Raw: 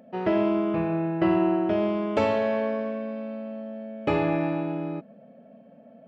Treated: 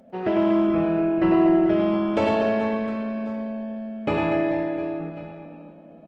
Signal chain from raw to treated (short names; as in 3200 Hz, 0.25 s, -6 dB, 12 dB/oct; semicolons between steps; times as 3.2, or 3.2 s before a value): on a send: reverse bouncing-ball echo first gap 0.1 s, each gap 1.4×, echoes 5; on the sum: Opus 16 kbps 48000 Hz